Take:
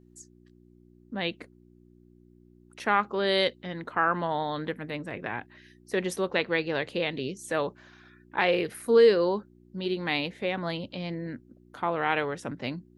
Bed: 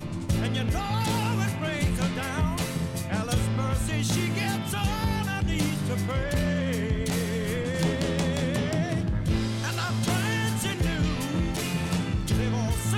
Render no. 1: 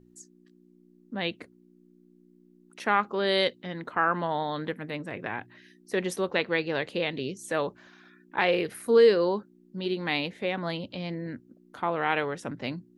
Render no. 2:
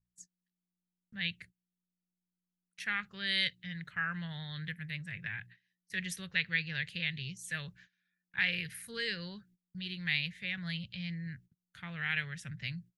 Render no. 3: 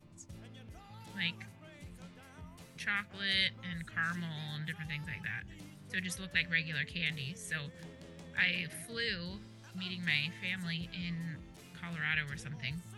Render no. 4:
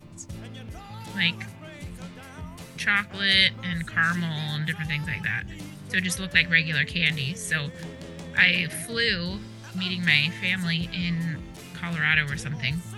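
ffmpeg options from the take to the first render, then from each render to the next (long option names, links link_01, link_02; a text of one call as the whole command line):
ffmpeg -i in.wav -af "bandreject=frequency=60:width_type=h:width=4,bandreject=frequency=120:width_type=h:width=4" out.wav
ffmpeg -i in.wav -af "agate=range=-22dB:threshold=-48dB:ratio=16:detection=peak,firequalizer=gain_entry='entry(160,0);entry(260,-28);entry(460,-27);entry(980,-27);entry(1700,-1);entry(4300,-3)':delay=0.05:min_phase=1" out.wav
ffmpeg -i in.wav -i bed.wav -filter_complex "[1:a]volume=-25dB[link_01];[0:a][link_01]amix=inputs=2:normalize=0" out.wav
ffmpeg -i in.wav -af "volume=12dB" out.wav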